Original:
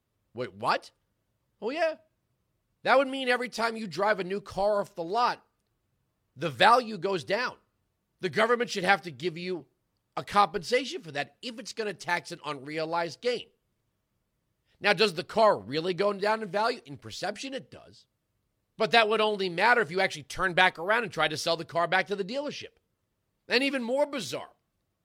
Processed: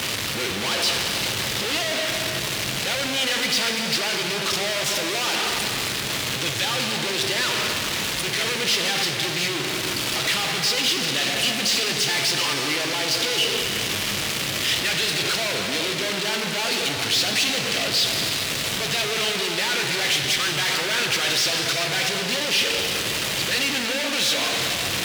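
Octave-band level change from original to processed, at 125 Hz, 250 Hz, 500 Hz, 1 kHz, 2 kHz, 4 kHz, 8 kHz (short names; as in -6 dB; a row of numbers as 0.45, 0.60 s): +8.5, +4.5, -1.0, -2.0, +6.5, +15.0, +21.5 dB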